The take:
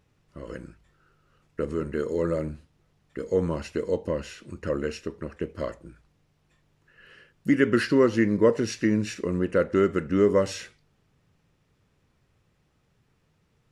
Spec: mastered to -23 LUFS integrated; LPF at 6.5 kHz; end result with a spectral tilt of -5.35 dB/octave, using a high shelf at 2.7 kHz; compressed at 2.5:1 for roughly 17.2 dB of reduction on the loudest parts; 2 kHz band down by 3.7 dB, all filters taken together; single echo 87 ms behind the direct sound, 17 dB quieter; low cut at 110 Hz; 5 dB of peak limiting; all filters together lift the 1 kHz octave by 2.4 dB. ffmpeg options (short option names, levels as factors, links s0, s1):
-af "highpass=110,lowpass=6500,equalizer=f=1000:t=o:g=5.5,equalizer=f=2000:t=o:g=-5,highshelf=f=2700:g=-4.5,acompressor=threshold=0.00794:ratio=2.5,alimiter=level_in=1.78:limit=0.0631:level=0:latency=1,volume=0.562,aecho=1:1:87:0.141,volume=8.91"